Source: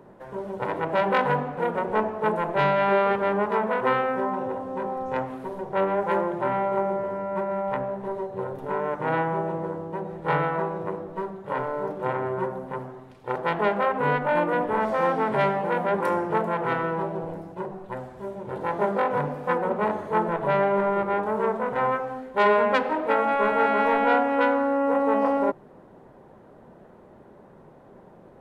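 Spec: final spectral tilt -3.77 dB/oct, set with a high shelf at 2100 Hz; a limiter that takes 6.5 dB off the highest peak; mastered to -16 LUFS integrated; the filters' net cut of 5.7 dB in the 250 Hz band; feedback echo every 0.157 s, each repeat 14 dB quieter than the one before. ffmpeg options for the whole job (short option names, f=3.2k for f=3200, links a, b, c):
-af "equalizer=f=250:t=o:g=-8,highshelf=f=2.1k:g=3,alimiter=limit=-14dB:level=0:latency=1,aecho=1:1:157|314:0.2|0.0399,volume=10.5dB"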